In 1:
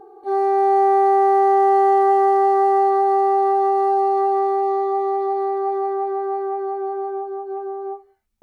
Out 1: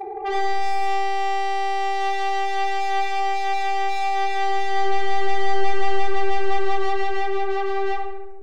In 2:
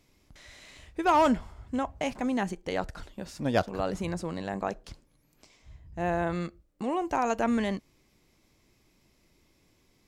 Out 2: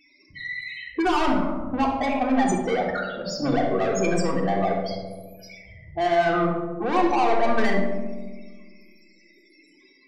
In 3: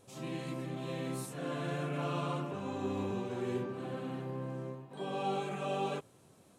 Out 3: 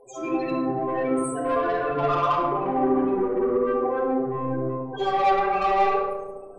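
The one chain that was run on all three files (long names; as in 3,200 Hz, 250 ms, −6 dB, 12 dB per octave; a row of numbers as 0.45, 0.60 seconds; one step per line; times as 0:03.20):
high-pass filter 1,100 Hz 6 dB per octave
in parallel at +2.5 dB: brickwall limiter −22.5 dBFS
on the sum: hard clipping −27 dBFS
spectral peaks only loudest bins 8
soft clipping −37 dBFS
on a send: feedback echo with a low-pass in the loop 69 ms, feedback 79%, low-pass 1,400 Hz, level −6 dB
on the sum: rectangular room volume 2,900 cubic metres, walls furnished, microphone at 3.6 metres
loudness normalisation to −24 LKFS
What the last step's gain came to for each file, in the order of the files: +9.5, +14.5, +15.0 decibels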